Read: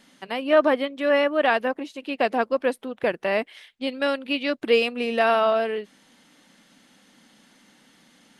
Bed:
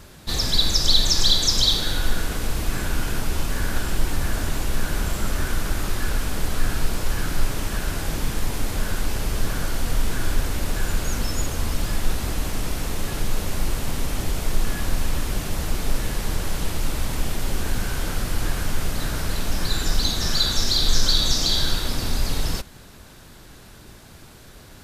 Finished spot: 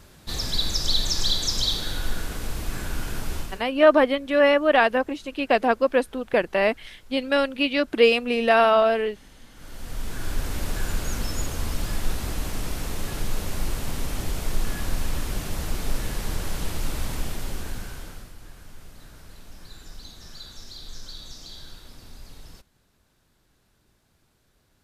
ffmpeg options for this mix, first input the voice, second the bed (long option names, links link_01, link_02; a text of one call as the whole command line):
ffmpeg -i stem1.wav -i stem2.wav -filter_complex "[0:a]adelay=3300,volume=2.5dB[link_01];[1:a]volume=19dB,afade=type=out:start_time=3.35:duration=0.29:silence=0.0749894,afade=type=in:start_time=9.52:duration=1.07:silence=0.0595662,afade=type=out:start_time=17.07:duration=1.27:silence=0.133352[link_02];[link_01][link_02]amix=inputs=2:normalize=0" out.wav